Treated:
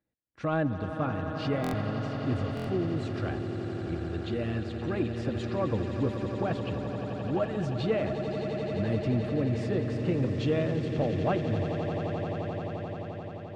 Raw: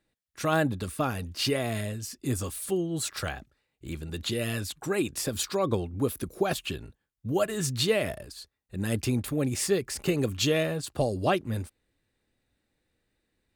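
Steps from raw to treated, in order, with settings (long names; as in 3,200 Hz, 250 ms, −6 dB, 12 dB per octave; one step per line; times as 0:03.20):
high-pass filter 50 Hz 12 dB per octave
notch filter 400 Hz, Q 12
on a send: echo that builds up and dies away 87 ms, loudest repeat 8, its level −12.5 dB
on the sum: leveller curve on the samples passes 1
head-to-tape spacing loss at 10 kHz 37 dB
buffer that repeats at 0:01.62/0:02.55, samples 1,024, times 4
level −3.5 dB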